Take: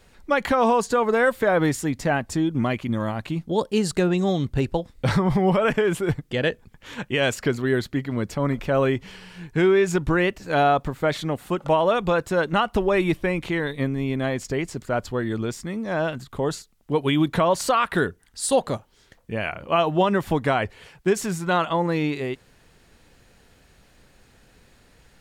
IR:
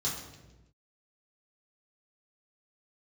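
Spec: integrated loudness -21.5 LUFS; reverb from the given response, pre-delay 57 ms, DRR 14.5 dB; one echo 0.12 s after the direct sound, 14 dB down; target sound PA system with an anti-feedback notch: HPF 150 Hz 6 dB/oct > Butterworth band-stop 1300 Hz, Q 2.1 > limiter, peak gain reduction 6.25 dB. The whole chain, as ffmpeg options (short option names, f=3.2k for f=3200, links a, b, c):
-filter_complex "[0:a]aecho=1:1:120:0.2,asplit=2[a][b];[1:a]atrim=start_sample=2205,adelay=57[c];[b][c]afir=irnorm=-1:irlink=0,volume=-19.5dB[d];[a][d]amix=inputs=2:normalize=0,highpass=f=150:p=1,asuperstop=centerf=1300:order=8:qfactor=2.1,volume=4.5dB,alimiter=limit=-10.5dB:level=0:latency=1"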